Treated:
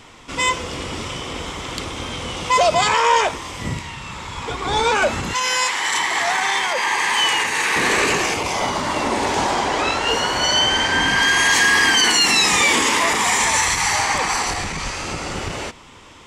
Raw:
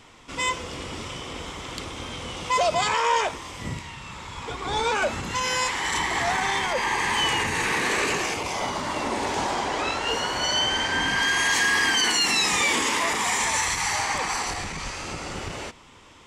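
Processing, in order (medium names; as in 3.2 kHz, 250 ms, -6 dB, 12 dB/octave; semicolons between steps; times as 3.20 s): 5.33–7.76 s: high-pass 750 Hz 6 dB/octave; trim +6.5 dB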